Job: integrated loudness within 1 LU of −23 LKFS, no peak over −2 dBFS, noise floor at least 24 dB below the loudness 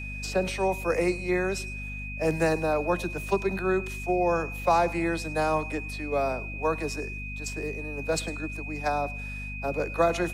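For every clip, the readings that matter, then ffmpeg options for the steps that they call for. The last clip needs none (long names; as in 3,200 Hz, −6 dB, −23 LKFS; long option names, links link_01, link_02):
mains hum 50 Hz; hum harmonics up to 250 Hz; level of the hum −35 dBFS; interfering tone 2,500 Hz; level of the tone −37 dBFS; integrated loudness −28.5 LKFS; sample peak −11.0 dBFS; target loudness −23.0 LKFS
→ -af "bandreject=frequency=50:width_type=h:width=6,bandreject=frequency=100:width_type=h:width=6,bandreject=frequency=150:width_type=h:width=6,bandreject=frequency=200:width_type=h:width=6,bandreject=frequency=250:width_type=h:width=6"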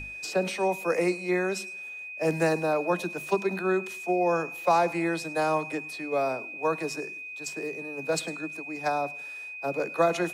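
mains hum none found; interfering tone 2,500 Hz; level of the tone −37 dBFS
→ -af "bandreject=frequency=2500:width=30"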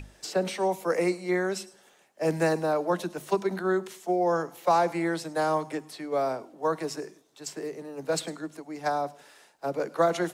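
interfering tone none found; integrated loudness −29.0 LKFS; sample peak −11.5 dBFS; target loudness −23.0 LKFS
→ -af "volume=6dB"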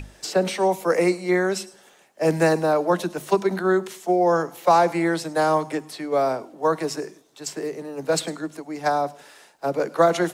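integrated loudness −23.0 LKFS; sample peak −5.5 dBFS; background noise floor −54 dBFS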